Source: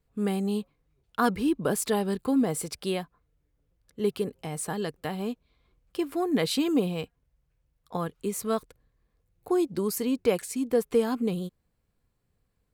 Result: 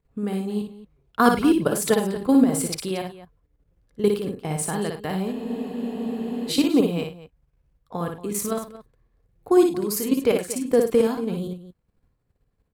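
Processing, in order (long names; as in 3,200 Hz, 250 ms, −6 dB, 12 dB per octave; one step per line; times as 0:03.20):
output level in coarse steps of 12 dB
on a send: multi-tap delay 58/102/231 ms −4.5/−14/−14.5 dB
on the sum: frozen spectrum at 0:05.35, 1.15 s
one half of a high-frequency compander decoder only
level +8.5 dB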